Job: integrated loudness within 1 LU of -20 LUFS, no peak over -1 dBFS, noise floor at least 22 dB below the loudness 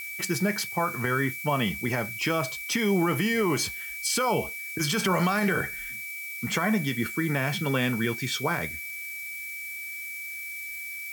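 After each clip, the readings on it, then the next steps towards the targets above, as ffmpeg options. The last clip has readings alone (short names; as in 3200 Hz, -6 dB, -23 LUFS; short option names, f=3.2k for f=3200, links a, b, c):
steady tone 2300 Hz; tone level -35 dBFS; noise floor -37 dBFS; noise floor target -50 dBFS; loudness -27.5 LUFS; peak -12.0 dBFS; loudness target -20.0 LUFS
-> -af "bandreject=f=2.3k:w=30"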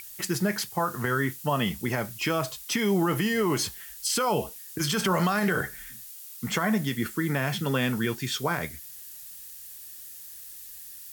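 steady tone none; noise floor -44 dBFS; noise floor target -50 dBFS
-> -af "afftdn=nr=6:nf=-44"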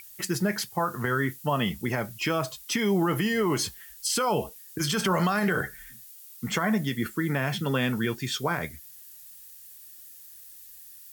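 noise floor -48 dBFS; noise floor target -50 dBFS
-> -af "afftdn=nr=6:nf=-48"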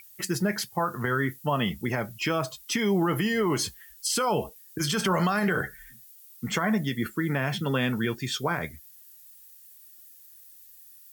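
noise floor -52 dBFS; loudness -27.5 LUFS; peak -12.5 dBFS; loudness target -20.0 LUFS
-> -af "volume=7.5dB"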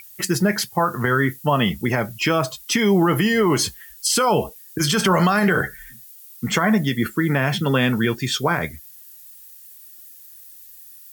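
loudness -20.0 LUFS; peak -5.0 dBFS; noise floor -44 dBFS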